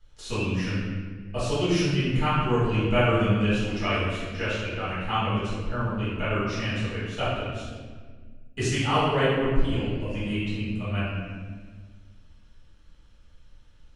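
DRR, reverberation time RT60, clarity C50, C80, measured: -13.0 dB, 1.6 s, -2.0 dB, 1.0 dB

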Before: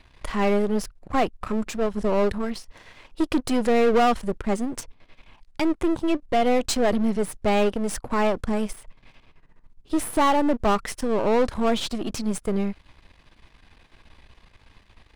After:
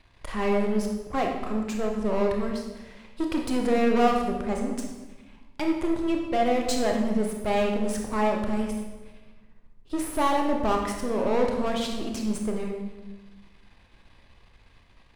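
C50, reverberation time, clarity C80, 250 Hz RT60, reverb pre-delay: 3.5 dB, 1.2 s, 6.0 dB, 1.7 s, 24 ms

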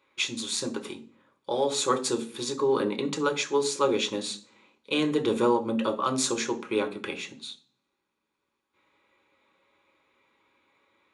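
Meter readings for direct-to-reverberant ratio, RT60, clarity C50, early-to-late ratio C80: 3.0 dB, 0.45 s, 15.0 dB, 19.0 dB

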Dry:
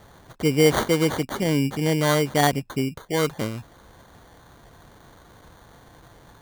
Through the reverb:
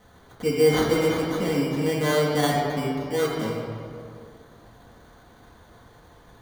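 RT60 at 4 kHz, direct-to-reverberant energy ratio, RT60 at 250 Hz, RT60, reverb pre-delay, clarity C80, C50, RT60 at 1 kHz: 1.4 s, -5.5 dB, 2.4 s, 2.5 s, 4 ms, 2.5 dB, 0.5 dB, 2.3 s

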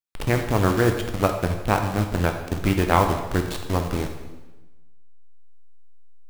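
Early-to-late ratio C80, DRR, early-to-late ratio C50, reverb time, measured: 9.0 dB, 4.0 dB, 7.0 dB, 1.1 s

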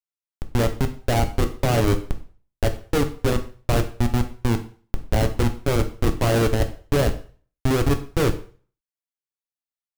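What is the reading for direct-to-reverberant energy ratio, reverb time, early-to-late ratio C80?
6.5 dB, 0.40 s, 17.5 dB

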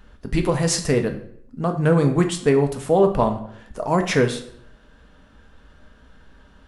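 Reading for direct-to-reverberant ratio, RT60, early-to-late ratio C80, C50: 5.0 dB, 0.70 s, 14.0 dB, 10.5 dB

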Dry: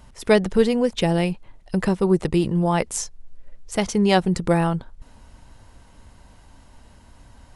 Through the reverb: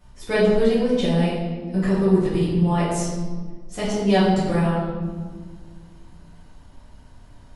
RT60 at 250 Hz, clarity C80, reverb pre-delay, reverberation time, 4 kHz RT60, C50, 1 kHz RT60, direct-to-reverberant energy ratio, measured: 2.7 s, 2.5 dB, 4 ms, 1.6 s, 1.0 s, 0.0 dB, 1.4 s, -12.0 dB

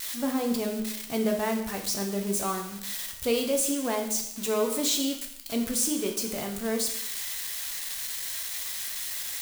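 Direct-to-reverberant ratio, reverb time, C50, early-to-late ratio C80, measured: 2.5 dB, 0.75 s, 7.0 dB, 10.0 dB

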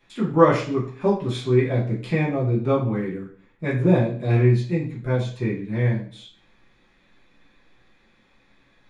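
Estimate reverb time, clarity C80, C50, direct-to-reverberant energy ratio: 0.55 s, 12.0 dB, 7.0 dB, -6.5 dB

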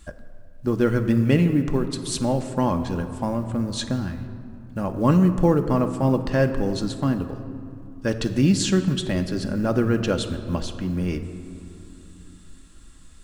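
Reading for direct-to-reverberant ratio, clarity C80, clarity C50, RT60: 5.5 dB, 10.5 dB, 10.0 dB, 2.9 s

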